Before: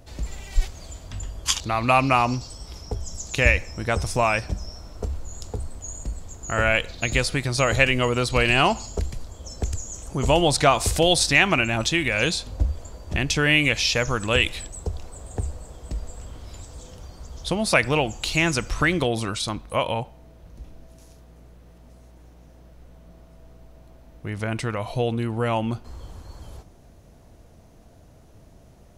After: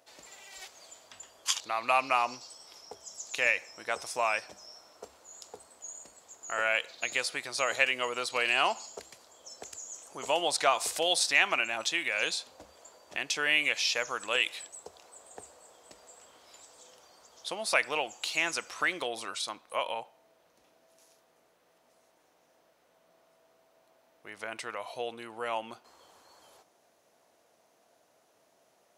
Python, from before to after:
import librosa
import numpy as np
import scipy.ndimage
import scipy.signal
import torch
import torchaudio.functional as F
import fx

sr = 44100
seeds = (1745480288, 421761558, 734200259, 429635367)

y = scipy.signal.sosfilt(scipy.signal.butter(2, 590.0, 'highpass', fs=sr, output='sos'), x)
y = y * librosa.db_to_amplitude(-6.5)